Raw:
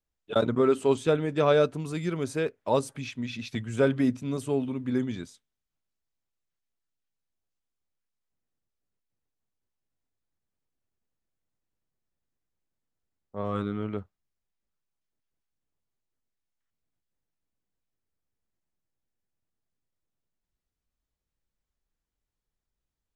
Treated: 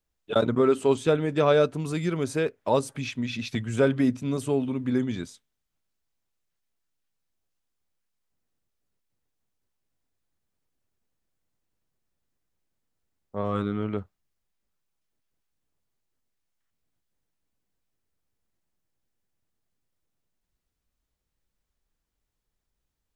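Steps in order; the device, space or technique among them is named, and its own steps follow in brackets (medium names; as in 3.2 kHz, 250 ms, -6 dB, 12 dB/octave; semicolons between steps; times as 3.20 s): parallel compression (in parallel at -2.5 dB: compression, threshold -32 dBFS, peak gain reduction 14.5 dB)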